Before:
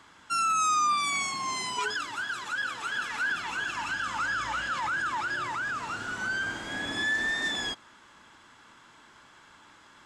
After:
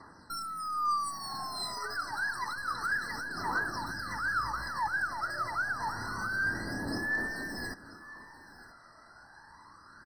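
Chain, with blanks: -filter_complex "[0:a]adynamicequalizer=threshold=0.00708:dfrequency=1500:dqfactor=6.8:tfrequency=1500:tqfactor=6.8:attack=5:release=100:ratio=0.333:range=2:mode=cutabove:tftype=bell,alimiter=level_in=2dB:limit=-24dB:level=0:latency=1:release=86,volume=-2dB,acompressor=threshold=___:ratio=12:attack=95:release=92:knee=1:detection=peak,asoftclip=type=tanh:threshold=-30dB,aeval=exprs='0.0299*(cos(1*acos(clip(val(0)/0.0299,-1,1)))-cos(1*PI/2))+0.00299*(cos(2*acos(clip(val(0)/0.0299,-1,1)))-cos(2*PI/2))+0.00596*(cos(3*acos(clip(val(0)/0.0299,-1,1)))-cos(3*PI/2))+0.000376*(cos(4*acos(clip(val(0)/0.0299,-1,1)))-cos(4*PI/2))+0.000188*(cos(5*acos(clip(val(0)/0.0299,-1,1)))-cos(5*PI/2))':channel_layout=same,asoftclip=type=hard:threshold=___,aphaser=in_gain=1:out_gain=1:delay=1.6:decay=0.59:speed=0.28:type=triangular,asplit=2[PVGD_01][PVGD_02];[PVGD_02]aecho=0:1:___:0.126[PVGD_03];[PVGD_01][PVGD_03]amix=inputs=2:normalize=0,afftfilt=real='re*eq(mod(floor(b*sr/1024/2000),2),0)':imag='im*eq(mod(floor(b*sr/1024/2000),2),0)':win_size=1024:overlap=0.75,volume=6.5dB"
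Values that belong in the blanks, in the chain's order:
-38dB, -37.5dB, 980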